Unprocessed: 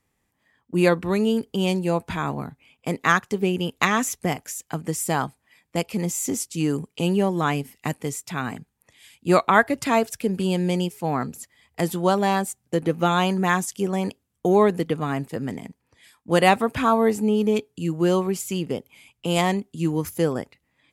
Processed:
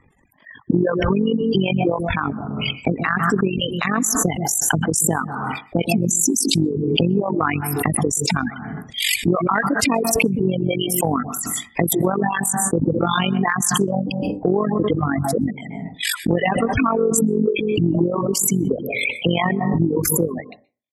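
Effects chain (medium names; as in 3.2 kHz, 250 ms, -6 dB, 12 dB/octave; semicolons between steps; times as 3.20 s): expander -47 dBFS; reverb removal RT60 1.3 s; spectral gate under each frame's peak -15 dB strong; AM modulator 47 Hz, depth 50%; reverberation RT60 0.35 s, pre-delay 117 ms, DRR 13.5 dB; dynamic bell 800 Hz, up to -7 dB, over -38 dBFS, Q 0.95; reverb removal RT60 1.9 s; compression 6:1, threshold -31 dBFS, peak gain reduction 13 dB; loudness maximiser +21.5 dB; swell ahead of each attack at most 25 dB/s; trim -6.5 dB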